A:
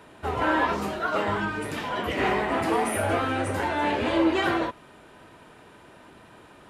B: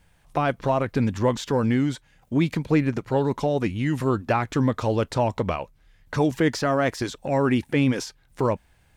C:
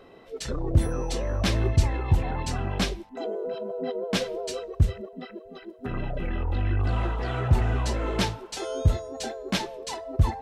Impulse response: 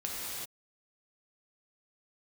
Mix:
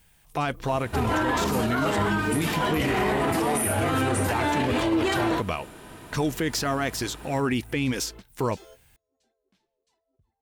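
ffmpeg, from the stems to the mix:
-filter_complex "[0:a]lowshelf=frequency=410:gain=6.5,adelay=700,volume=3dB[link_01];[1:a]equalizer=frequency=2800:width=1.3:gain=3.5,volume=-2.5dB,asplit=2[link_02][link_03];[2:a]equalizer=frequency=770:width_type=o:width=2.3:gain=-4,acompressor=threshold=-28dB:ratio=5,volume=-14dB[link_04];[link_03]apad=whole_len=459480[link_05];[link_04][link_05]sidechaingate=range=-24dB:threshold=-50dB:ratio=16:detection=peak[link_06];[link_01][link_02]amix=inputs=2:normalize=0,aemphasis=mode=production:type=50fm,alimiter=limit=-16dB:level=0:latency=1:release=17,volume=0dB[link_07];[link_06][link_07]amix=inputs=2:normalize=0,bandreject=frequency=560:width=12"

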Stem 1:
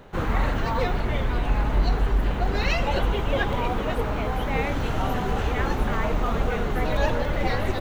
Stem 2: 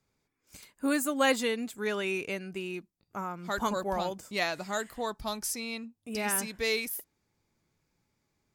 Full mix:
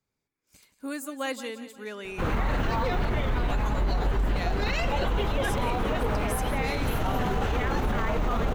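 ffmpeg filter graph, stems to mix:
ffmpeg -i stem1.wav -i stem2.wav -filter_complex "[0:a]adelay=2050,volume=1.5dB[link_01];[1:a]volume=-6.5dB,asplit=3[link_02][link_03][link_04];[link_03]volume=-13.5dB[link_05];[link_04]apad=whole_len=434585[link_06];[link_01][link_06]sidechaincompress=threshold=-36dB:ratio=3:attack=30:release=447[link_07];[link_05]aecho=0:1:176|352|528|704|880|1056|1232:1|0.5|0.25|0.125|0.0625|0.0312|0.0156[link_08];[link_07][link_02][link_08]amix=inputs=3:normalize=0,alimiter=limit=-18dB:level=0:latency=1:release=31" out.wav

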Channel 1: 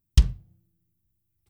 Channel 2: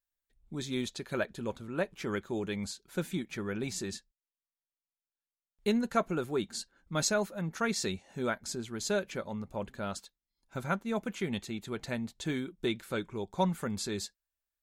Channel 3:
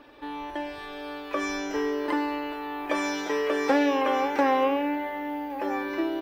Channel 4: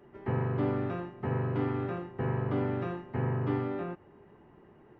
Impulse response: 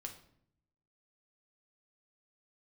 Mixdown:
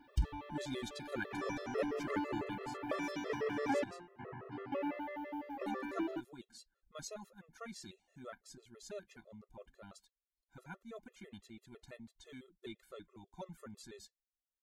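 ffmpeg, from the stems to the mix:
-filter_complex "[0:a]alimiter=limit=-15dB:level=0:latency=1:release=20,volume=-7.5dB[link_01];[1:a]asubboost=boost=3:cutoff=59,volume=-4dB,afade=type=out:start_time=2.19:duration=0.56:silence=0.316228[link_02];[2:a]highshelf=frequency=4600:gain=-7,volume=-8dB,asplit=3[link_03][link_04][link_05];[link_03]atrim=end=3.84,asetpts=PTS-STARTPTS,afade=type=out:start_time=3.836:duration=0.004:curve=hsin[link_06];[link_04]atrim=start=3.84:end=4.72,asetpts=PTS-STARTPTS,volume=0[link_07];[link_05]atrim=start=4.72,asetpts=PTS-STARTPTS,afade=type=in:duration=0.004:curve=hsin[link_08];[link_06][link_07][link_08]concat=n=3:v=0:a=1[link_09];[3:a]acontrast=59,highpass=frequency=520:poles=1,adelay=1050,volume=-13dB[link_10];[link_01][link_02][link_09][link_10]amix=inputs=4:normalize=0,afftfilt=real='re*gt(sin(2*PI*6*pts/sr)*(1-2*mod(floor(b*sr/1024/350),2)),0)':imag='im*gt(sin(2*PI*6*pts/sr)*(1-2*mod(floor(b*sr/1024/350),2)),0)':win_size=1024:overlap=0.75"

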